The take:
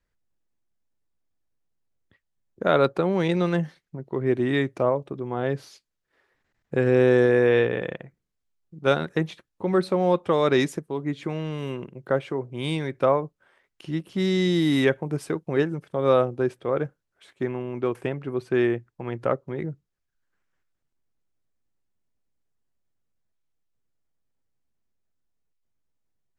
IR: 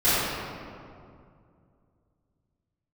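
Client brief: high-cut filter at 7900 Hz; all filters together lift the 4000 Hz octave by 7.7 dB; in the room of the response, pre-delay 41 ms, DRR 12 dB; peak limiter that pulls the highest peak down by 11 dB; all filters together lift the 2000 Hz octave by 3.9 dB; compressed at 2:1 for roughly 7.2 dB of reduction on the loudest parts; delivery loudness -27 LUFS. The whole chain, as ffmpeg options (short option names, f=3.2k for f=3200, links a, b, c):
-filter_complex "[0:a]lowpass=7.9k,equalizer=f=2k:t=o:g=3,equalizer=f=4k:t=o:g=8,acompressor=threshold=-27dB:ratio=2,alimiter=limit=-21dB:level=0:latency=1,asplit=2[a][b];[1:a]atrim=start_sample=2205,adelay=41[c];[b][c]afir=irnorm=-1:irlink=0,volume=-31dB[d];[a][d]amix=inputs=2:normalize=0,volume=5.5dB"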